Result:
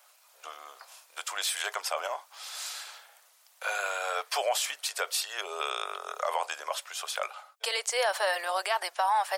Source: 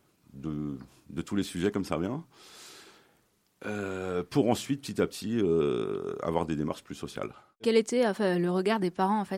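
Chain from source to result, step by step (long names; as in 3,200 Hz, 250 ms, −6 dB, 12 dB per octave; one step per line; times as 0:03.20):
Butterworth high-pass 590 Hz 48 dB per octave
high-shelf EQ 3,900 Hz +5 dB
brickwall limiter −26.5 dBFS, peak gain reduction 10 dB
level +8.5 dB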